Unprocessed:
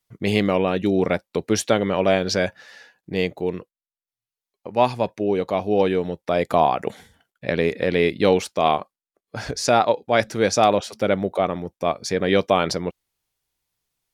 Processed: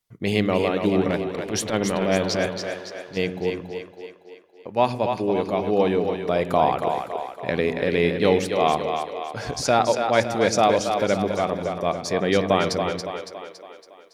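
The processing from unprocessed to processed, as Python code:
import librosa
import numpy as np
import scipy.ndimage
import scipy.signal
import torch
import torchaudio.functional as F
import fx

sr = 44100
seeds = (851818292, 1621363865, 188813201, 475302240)

y = fx.transient(x, sr, attack_db=-12, sustain_db=2, at=(1.01, 3.17))
y = fx.echo_split(y, sr, split_hz=320.0, low_ms=103, high_ms=280, feedback_pct=52, wet_db=-6.0)
y = fx.rev_spring(y, sr, rt60_s=1.6, pass_ms=(52,), chirp_ms=50, drr_db=18.5)
y = y * librosa.db_to_amplitude(-2.0)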